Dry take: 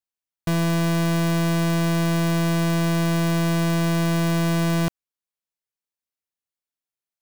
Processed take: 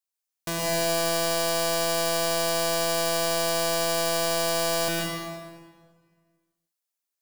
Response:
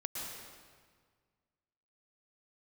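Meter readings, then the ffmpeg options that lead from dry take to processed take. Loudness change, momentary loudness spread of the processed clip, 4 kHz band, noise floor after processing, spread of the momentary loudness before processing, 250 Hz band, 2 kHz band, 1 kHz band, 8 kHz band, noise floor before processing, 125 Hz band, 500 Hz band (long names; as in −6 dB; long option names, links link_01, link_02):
−3.0 dB, 7 LU, +5.0 dB, below −85 dBFS, 2 LU, −14.0 dB, −1.0 dB, +1.0 dB, +7.0 dB, below −85 dBFS, −18.0 dB, +2.5 dB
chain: -filter_complex "[0:a]bass=frequency=250:gain=-14,treble=frequency=4000:gain=7[link_01];[1:a]atrim=start_sample=2205[link_02];[link_01][link_02]afir=irnorm=-1:irlink=0"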